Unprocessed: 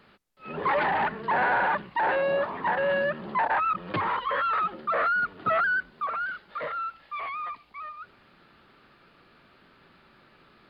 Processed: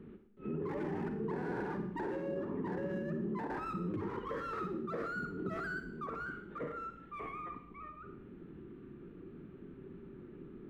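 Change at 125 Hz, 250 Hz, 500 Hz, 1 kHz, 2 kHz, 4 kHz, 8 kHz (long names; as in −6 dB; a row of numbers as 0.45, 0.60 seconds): +1.0 dB, +2.0 dB, −10.0 dB, −17.0 dB, −17.5 dB, −19.5 dB, can't be measured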